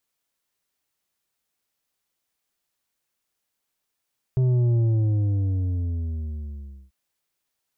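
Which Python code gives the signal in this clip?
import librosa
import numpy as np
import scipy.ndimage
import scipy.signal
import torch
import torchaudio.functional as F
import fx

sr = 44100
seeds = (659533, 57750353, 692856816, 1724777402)

y = fx.sub_drop(sr, level_db=-18, start_hz=130.0, length_s=2.54, drive_db=7.0, fade_s=2.16, end_hz=65.0)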